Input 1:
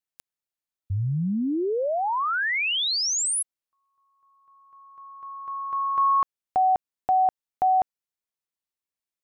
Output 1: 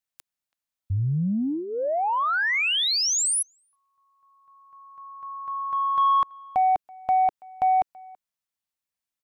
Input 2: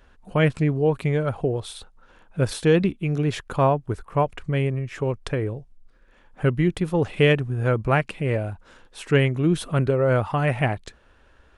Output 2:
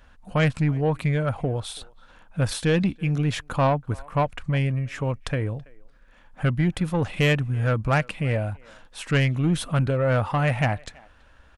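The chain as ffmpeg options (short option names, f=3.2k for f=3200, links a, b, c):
-filter_complex "[0:a]equalizer=f=390:t=o:w=0.46:g=-11,aeval=exprs='0.355*(cos(1*acos(clip(val(0)/0.355,-1,1)))-cos(1*PI/2))+0.0355*(cos(5*acos(clip(val(0)/0.355,-1,1)))-cos(5*PI/2))':c=same,asplit=2[a][b];[b]adelay=330,highpass=300,lowpass=3.4k,asoftclip=type=hard:threshold=-11dB,volume=-24dB[c];[a][c]amix=inputs=2:normalize=0,volume=-1.5dB"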